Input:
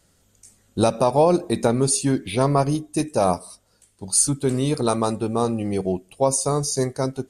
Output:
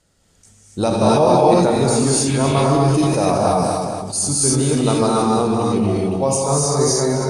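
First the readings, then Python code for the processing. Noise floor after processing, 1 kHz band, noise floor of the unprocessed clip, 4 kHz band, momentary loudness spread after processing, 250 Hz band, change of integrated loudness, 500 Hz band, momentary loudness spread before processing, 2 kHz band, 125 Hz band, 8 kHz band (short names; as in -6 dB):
-57 dBFS, +6.0 dB, -62 dBFS, +6.5 dB, 7 LU, +5.5 dB, +5.0 dB, +5.0 dB, 6 LU, +6.0 dB, +6.0 dB, +4.0 dB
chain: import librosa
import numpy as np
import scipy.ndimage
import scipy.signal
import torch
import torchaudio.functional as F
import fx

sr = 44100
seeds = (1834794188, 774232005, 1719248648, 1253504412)

y = scipy.signal.sosfilt(scipy.signal.butter(2, 8900.0, 'lowpass', fs=sr, output='sos'), x)
y = fx.echo_feedback(y, sr, ms=237, feedback_pct=47, wet_db=-11.5)
y = fx.rev_gated(y, sr, seeds[0], gate_ms=310, shape='rising', drr_db=-5.0)
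y = fx.sustainer(y, sr, db_per_s=24.0)
y = y * librosa.db_to_amplitude(-1.5)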